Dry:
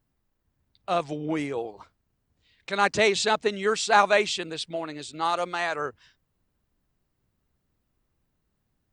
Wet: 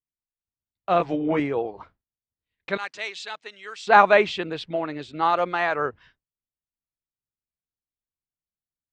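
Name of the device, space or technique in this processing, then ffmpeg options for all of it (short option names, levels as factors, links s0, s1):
hearing-loss simulation: -filter_complex "[0:a]asettb=1/sr,asplit=3[s0][s1][s2];[s0]atrim=end=0.984[s3];[s1]atrim=start=0.98:end=1.4,asetpts=PTS-STARTPTS,afade=t=in:d=0.004:c=qsin,afade=t=out:st=0.416:d=0.004:c=qsin,asplit=2[s4][s5];[s5]adelay=17,volume=0.708[s6];[s4][s6]amix=inputs=2:normalize=0,atrim=end_sample=18522[s7];[s2]atrim=start=1.396[s8];[s3][s7]acrossfade=d=0.004:c1=hsin:c2=qsin[s9];[s9][s8]acrossfade=d=0.004:c1=qsin:c2=hsin,asettb=1/sr,asplit=3[s10][s11][s12];[s10]atrim=end=2.774[s13];[s11]atrim=start=2.77:end=3.87,asetpts=PTS-STARTPTS,afade=t=in:d=0.004:c=qsin,afade=t=out:st=1.096:d=0.004:c=qsin,aderivative[s14];[s12]atrim=start=3.866[s15];[s13][s14]acrossfade=d=0.004:c1=hsin:c2=qsin[s16];[s16][s15]acrossfade=d=0.004:c1=qsin:c2=hsin,lowpass=2500,agate=range=0.0224:threshold=0.00224:ratio=3:detection=peak,volume=1.78"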